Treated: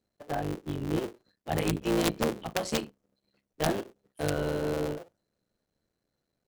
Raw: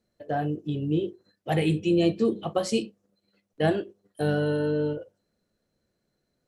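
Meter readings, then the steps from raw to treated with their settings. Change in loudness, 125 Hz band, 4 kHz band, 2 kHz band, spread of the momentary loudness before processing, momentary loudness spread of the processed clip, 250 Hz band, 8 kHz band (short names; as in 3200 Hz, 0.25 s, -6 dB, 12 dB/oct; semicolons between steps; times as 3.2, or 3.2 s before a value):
-4.5 dB, -5.5 dB, -0.5 dB, -2.0 dB, 11 LU, 11 LU, -6.0 dB, +4.0 dB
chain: cycle switcher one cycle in 3, muted; wrapped overs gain 14 dB; gain -3 dB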